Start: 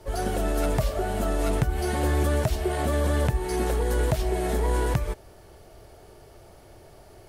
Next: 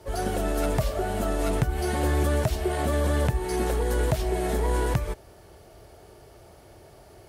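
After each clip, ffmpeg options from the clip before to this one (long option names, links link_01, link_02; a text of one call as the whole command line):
ffmpeg -i in.wav -af "highpass=41" out.wav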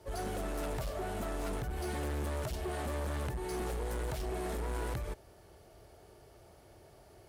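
ffmpeg -i in.wav -af "asoftclip=type=hard:threshold=-26dB,volume=-7.5dB" out.wav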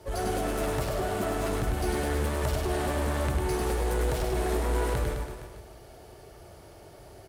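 ffmpeg -i in.wav -af "aecho=1:1:100|210|331|464.1|610.5:0.631|0.398|0.251|0.158|0.1,volume=6.5dB" out.wav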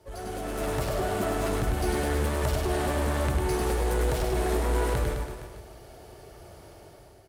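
ffmpeg -i in.wav -af "dynaudnorm=framelen=230:gausssize=5:maxgain=9dB,volume=-7.5dB" out.wav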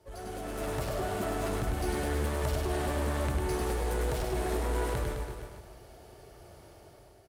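ffmpeg -i in.wav -af "aecho=1:1:354:0.188,volume=-4.5dB" out.wav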